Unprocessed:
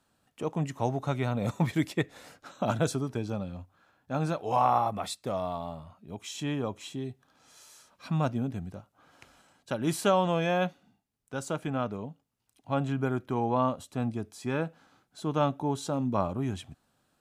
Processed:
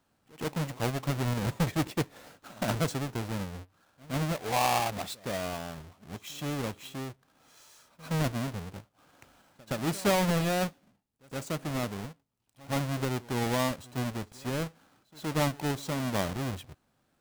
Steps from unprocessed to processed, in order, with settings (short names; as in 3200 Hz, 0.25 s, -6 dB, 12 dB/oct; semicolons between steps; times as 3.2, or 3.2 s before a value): half-waves squared off; pre-echo 0.119 s -22 dB; gain -5.5 dB